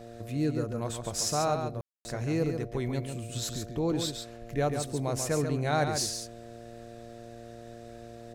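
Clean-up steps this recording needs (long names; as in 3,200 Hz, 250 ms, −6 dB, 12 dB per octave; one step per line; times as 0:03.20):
hum removal 116.6 Hz, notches 6
ambience match 0:01.81–0:02.05
echo removal 139 ms −6.5 dB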